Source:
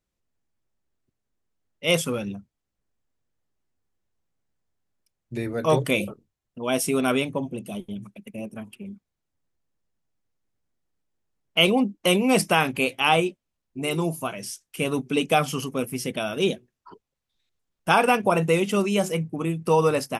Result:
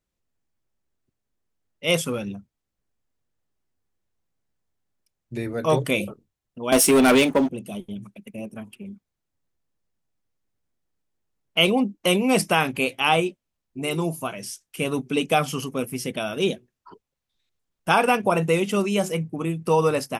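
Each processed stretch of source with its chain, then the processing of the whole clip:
0:06.72–0:07.50: high-pass filter 210 Hz 24 dB per octave + leveller curve on the samples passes 3
whole clip: no processing

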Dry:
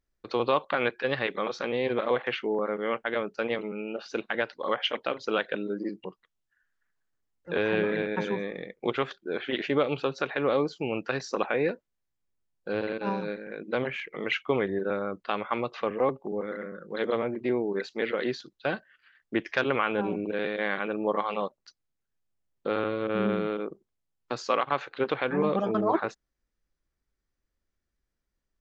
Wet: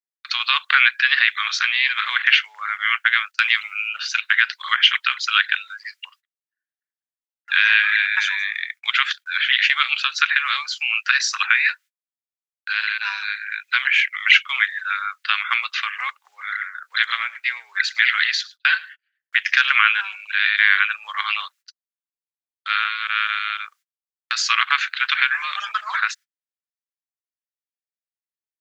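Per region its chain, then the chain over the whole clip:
0:03.31–0:03.88: noise gate −45 dBFS, range −45 dB + high-shelf EQ 4,300 Hz +7.5 dB + upward compression, threshold −50 dBFS
0:16.91–0:19.87: low shelf with overshoot 260 Hz −11.5 dB, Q 3 + single-tap delay 107 ms −20.5 dB
whole clip: noise gate −48 dBFS, range −34 dB; Butterworth high-pass 1,500 Hz 36 dB per octave; boost into a limiter +20.5 dB; level −1 dB

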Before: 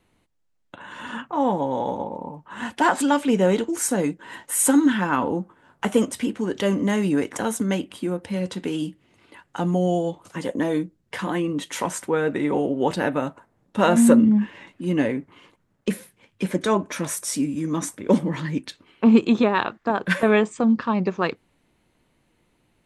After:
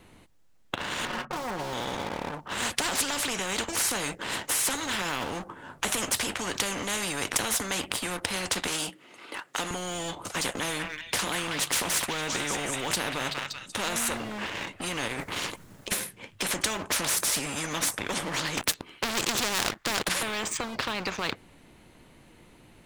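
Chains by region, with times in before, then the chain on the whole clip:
0:01.05–0:01.73: low-pass filter 1,100 Hz + comb filter 5.5 ms, depth 83%
0:08.67–0:09.71: Bessel high-pass filter 440 Hz + parametric band 1,300 Hz +5.5 dB 0.23 octaves
0:10.52–0:14.17: hum removal 70.84 Hz, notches 2 + echo through a band-pass that steps 190 ms, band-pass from 1,900 Hz, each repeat 0.7 octaves, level −6 dB
0:15.08–0:15.92: high-shelf EQ 3,700 Hz +10 dB + compressor whose output falls as the input rises −30 dBFS, ratio −0.5
0:18.57–0:20.09: high-shelf EQ 6,400 Hz +6 dB + leveller curve on the samples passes 3
whole clip: leveller curve on the samples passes 1; boost into a limiter +13.5 dB; every bin compressed towards the loudest bin 4 to 1; level −7 dB

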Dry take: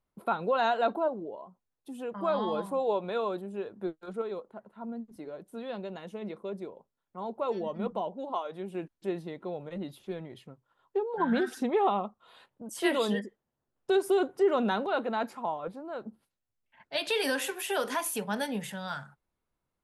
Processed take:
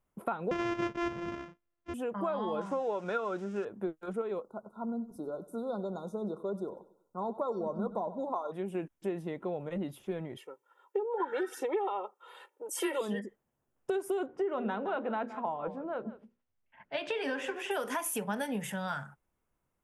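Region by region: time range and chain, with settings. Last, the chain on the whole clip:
0:00.51–0:01.94: samples sorted by size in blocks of 128 samples + Bessel low-pass filter 3,600 Hz, order 8 + parametric band 760 Hz −7 dB 0.3 octaves
0:02.61–0:03.65: spike at every zero crossing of −37 dBFS + low-pass filter 6,200 Hz 24 dB per octave + parametric band 1,400 Hz +12 dB 0.24 octaves
0:04.42–0:08.52: linear-phase brick-wall band-stop 1,500–3,500 Hz + repeating echo 95 ms, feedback 43%, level −17 dB
0:10.37–0:13.01: high-pass filter 320 Hz 24 dB per octave + comb filter 2.2 ms, depth 86%
0:14.26–0:17.71: high-frequency loss of the air 140 metres + mains-hum notches 60/120/180/240/300/360/420/480/540/600 Hz + single-tap delay 168 ms −16.5 dB
whole clip: downward compressor 6 to 1, threshold −33 dBFS; parametric band 4,200 Hz −12.5 dB 0.44 octaves; level +3 dB

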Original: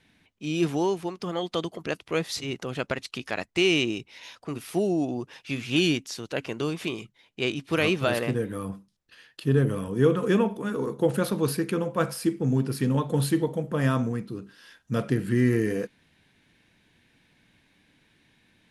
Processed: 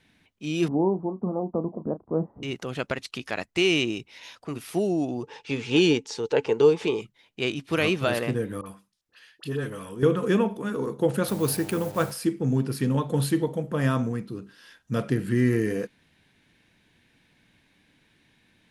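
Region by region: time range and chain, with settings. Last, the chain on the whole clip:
0:00.68–0:02.43: Butterworth low-pass 980 Hz + parametric band 220 Hz +11 dB 0.6 octaves + double-tracking delay 32 ms −12.5 dB
0:05.23–0:07.01: low-pass filter 8,300 Hz 24 dB per octave + hollow resonant body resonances 450/860 Hz, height 17 dB, ringing for 55 ms
0:08.61–0:10.03: low-shelf EQ 490 Hz −11 dB + all-pass dispersion highs, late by 48 ms, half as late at 1,100 Hz
0:11.27–0:12.10: hold until the input has moved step −41.5 dBFS + high-shelf EQ 7,200 Hz +8.5 dB + hum with harmonics 100 Hz, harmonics 9, −43 dBFS −2 dB per octave
whole clip: no processing

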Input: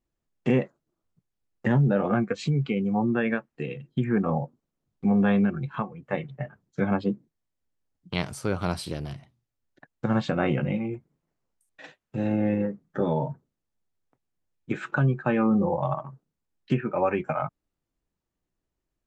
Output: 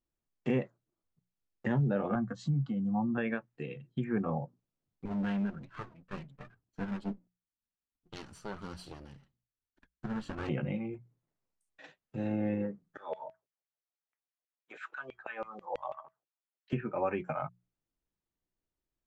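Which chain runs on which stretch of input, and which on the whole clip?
0:02.15–0:03.18: high-pass filter 52 Hz + parametric band 270 Hz +6 dB 2.3 octaves + phaser with its sweep stopped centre 1,000 Hz, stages 4
0:05.05–0:10.49: lower of the sound and its delayed copy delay 0.69 ms + flanger 1.3 Hz, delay 2.3 ms, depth 3.1 ms, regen −39%
0:12.97–0:16.73: auto-filter high-pass saw down 6.1 Hz 460–2,600 Hz + tuned comb filter 640 Hz, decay 0.18 s, harmonics odd, mix 50%
whole clip: low-pass filter 8,000 Hz; mains-hum notches 60/120/180 Hz; level −7.5 dB

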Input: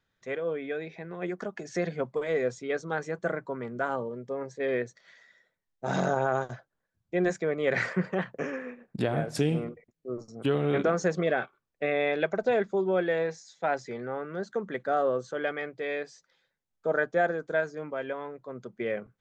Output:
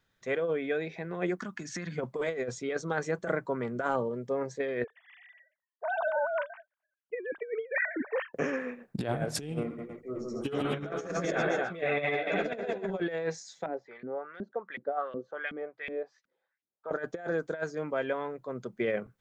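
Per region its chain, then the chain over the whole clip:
0:01.37–0:01.98: flat-topped bell 560 Hz −14 dB 1.3 octaves + downward compressor, threshold −35 dBFS
0:04.84–0:08.34: three sine waves on the formant tracks + high-frequency loss of the air 50 metres
0:09.63–0:13.00: multi-tap delay 70/153/262/521 ms −6.5/−3.5/−4/−12 dB + string-ensemble chorus
0:13.66–0:16.91: low-pass filter 5,900 Hz + auto-filter band-pass saw up 2.7 Hz 210–2,900 Hz
whole clip: high-shelf EQ 7,500 Hz +4 dB; compressor whose output falls as the input rises −30 dBFS, ratio −0.5

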